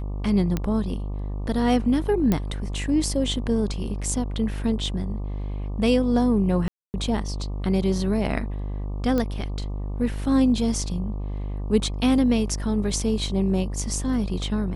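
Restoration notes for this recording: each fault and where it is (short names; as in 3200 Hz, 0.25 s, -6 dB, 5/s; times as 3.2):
buzz 50 Hz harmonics 24 -29 dBFS
0.57 pop -12 dBFS
2.32 pop -9 dBFS
6.68–6.94 gap 0.259 s
9.18 pop -13 dBFS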